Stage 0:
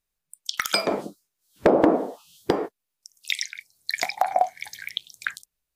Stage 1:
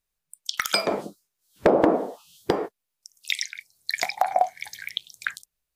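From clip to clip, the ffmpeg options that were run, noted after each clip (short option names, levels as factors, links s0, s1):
-af "equalizer=f=280:t=o:w=0.56:g=-3"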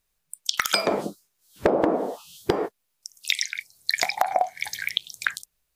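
-af "acompressor=threshold=0.0501:ratio=4,volume=2.24"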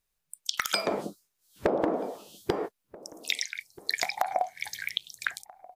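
-filter_complex "[0:a]asplit=2[s0][s1];[s1]adelay=1283,volume=0.0891,highshelf=f=4000:g=-28.9[s2];[s0][s2]amix=inputs=2:normalize=0,volume=0.531"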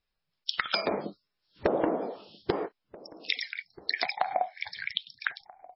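-ar 16000 -c:a libmp3lame -b:a 16k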